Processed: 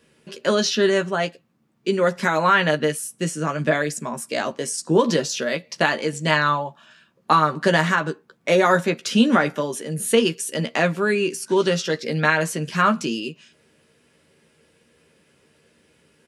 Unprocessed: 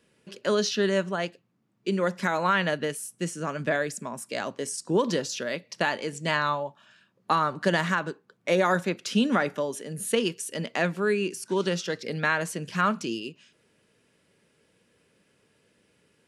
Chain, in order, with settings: doubling 13 ms -6 dB; trim +5.5 dB

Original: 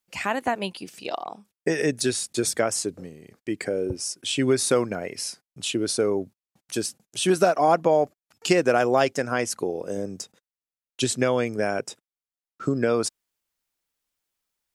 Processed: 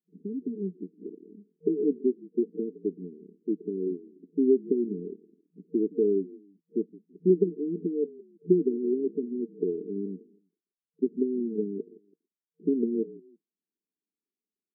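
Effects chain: frequency-shifting echo 165 ms, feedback 31%, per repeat -48 Hz, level -21.5 dB; FFT band-pass 170–460 Hz

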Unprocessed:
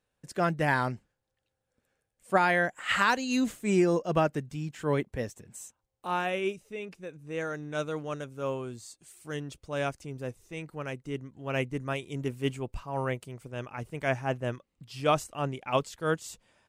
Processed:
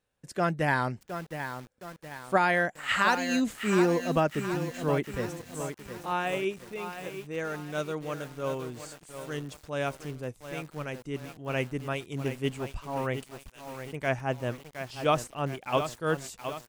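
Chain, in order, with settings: 13.26–13.93 s: differentiator; bit-crushed delay 716 ms, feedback 55%, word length 7-bit, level -8.5 dB

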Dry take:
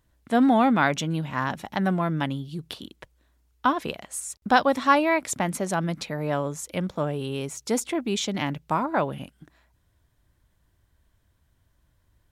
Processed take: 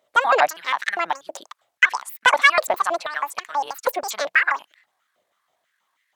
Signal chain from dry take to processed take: pitch shift switched off and on -11 st, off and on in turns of 161 ms; treble shelf 6.3 kHz -5 dB; speed mistake 7.5 ips tape played at 15 ips; step-sequenced high-pass 6.2 Hz 590–1900 Hz; trim +1.5 dB

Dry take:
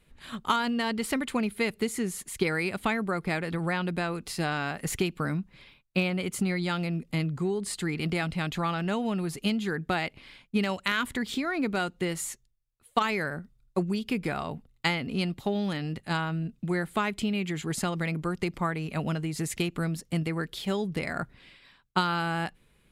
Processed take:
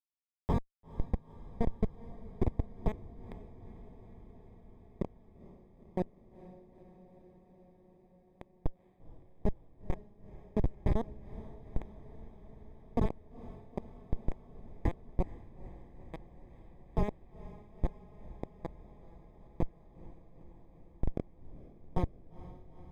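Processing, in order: high-pass 370 Hz 6 dB/octave; Schmitt trigger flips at -21 dBFS; boxcar filter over 31 samples; on a send: echo that smears into a reverb 465 ms, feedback 74%, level -16 dB; on the sum: trim +9.5 dB

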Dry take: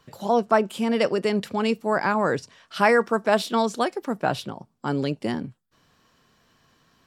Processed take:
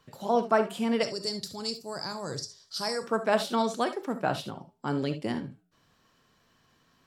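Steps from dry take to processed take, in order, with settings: 1.03–3.03 s: FFT filter 140 Hz 0 dB, 210 Hz -11 dB, 310 Hz -8 dB, 2.8 kHz -15 dB, 4.6 kHz +13 dB, 9.1 kHz +6 dB; flange 0.96 Hz, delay 6.3 ms, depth 2.6 ms, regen -89%; gated-style reverb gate 90 ms rising, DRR 9.5 dB

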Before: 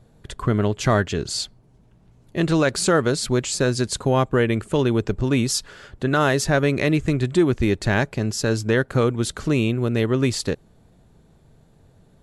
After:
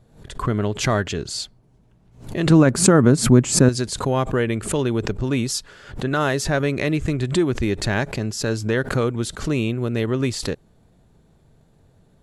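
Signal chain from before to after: 2.50–3.69 s: graphic EQ 125/250/1000/4000 Hz +9/+11/+4/-9 dB; swell ahead of each attack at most 120 dB/s; trim -2 dB

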